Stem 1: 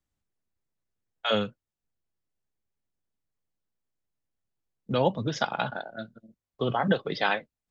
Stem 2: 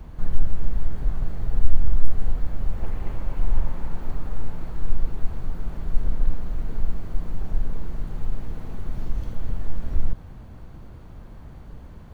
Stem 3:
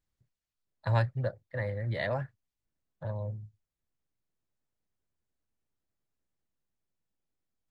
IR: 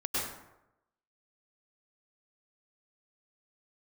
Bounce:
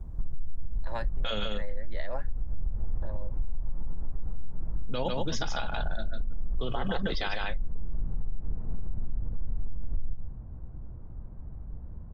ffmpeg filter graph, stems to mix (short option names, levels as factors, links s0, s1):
-filter_complex "[0:a]highshelf=f=3300:g=10,volume=0.75,asplit=2[s0][s1];[s1]volume=0.668[s2];[1:a]lowpass=1100,lowshelf=f=160:g=11.5,acompressor=threshold=0.398:ratio=10,volume=0.335,asplit=2[s3][s4];[s4]volume=0.355[s5];[2:a]highpass=f=210:w=0.5412,highpass=f=210:w=1.3066,volume=0.794[s6];[s2][s5]amix=inputs=2:normalize=0,aecho=0:1:147:1[s7];[s0][s3][s6][s7]amix=inputs=4:normalize=0,alimiter=limit=0.1:level=0:latency=1:release=68"